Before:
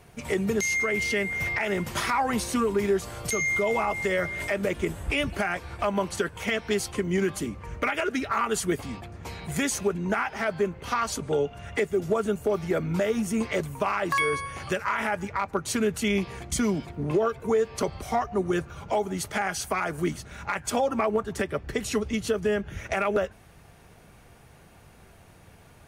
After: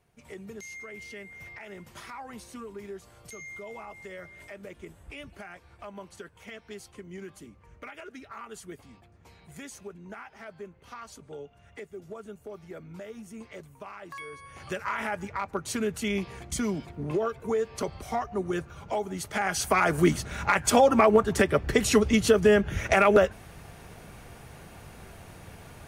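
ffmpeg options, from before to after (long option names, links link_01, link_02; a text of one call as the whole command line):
ffmpeg -i in.wav -af "volume=6dB,afade=type=in:start_time=14.37:duration=0.48:silence=0.237137,afade=type=in:start_time=19.27:duration=0.63:silence=0.316228" out.wav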